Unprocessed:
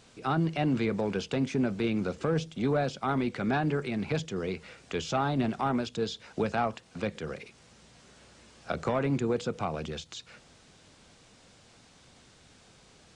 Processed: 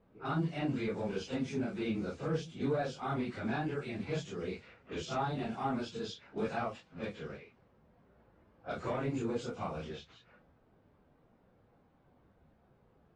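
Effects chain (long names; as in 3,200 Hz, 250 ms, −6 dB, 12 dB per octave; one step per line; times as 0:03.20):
random phases in long frames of 100 ms
low-pass that shuts in the quiet parts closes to 900 Hz, open at −27.5 dBFS
level −6.5 dB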